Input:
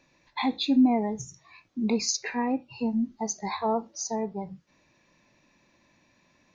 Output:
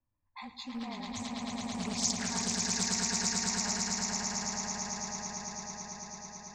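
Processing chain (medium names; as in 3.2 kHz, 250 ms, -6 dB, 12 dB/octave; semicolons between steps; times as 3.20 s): Doppler pass-by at 1.99 s, 12 m/s, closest 12 m; level-controlled noise filter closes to 640 Hz, open at -33 dBFS; FFT filter 120 Hz 0 dB, 170 Hz -15 dB, 310 Hz -16 dB, 490 Hz -23 dB, 1.2 kHz -5 dB, 3.7 kHz -11 dB, 8.1 kHz +3 dB; frequency shift -30 Hz; echo with a slow build-up 110 ms, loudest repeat 8, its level -3 dB; loudspeaker Doppler distortion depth 0.35 ms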